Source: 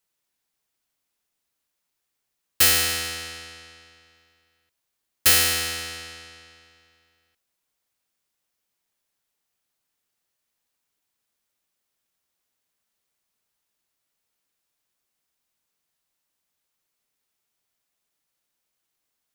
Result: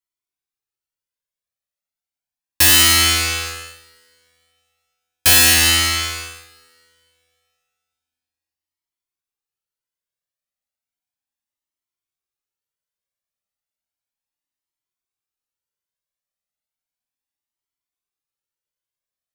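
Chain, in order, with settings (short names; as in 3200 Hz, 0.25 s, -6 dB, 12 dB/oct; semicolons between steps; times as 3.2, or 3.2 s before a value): sample leveller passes 5; two-slope reverb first 0.96 s, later 2.8 s, from -21 dB, DRR 9 dB; cascading flanger rising 0.34 Hz; gain +2 dB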